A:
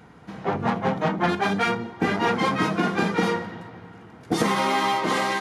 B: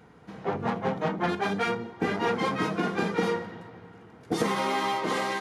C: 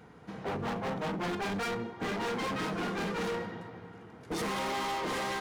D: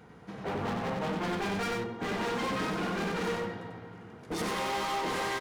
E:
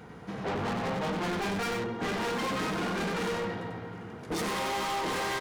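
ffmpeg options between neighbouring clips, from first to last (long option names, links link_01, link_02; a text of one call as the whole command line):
ffmpeg -i in.wav -af "equalizer=frequency=450:width_type=o:width=0.45:gain=4.5,volume=-5.5dB" out.wav
ffmpeg -i in.wav -af "volume=31.5dB,asoftclip=hard,volume=-31.5dB" out.wav
ffmpeg -i in.wav -af "aecho=1:1:93:0.631" out.wav
ffmpeg -i in.wav -af "asoftclip=type=tanh:threshold=-34.5dB,volume=6dB" out.wav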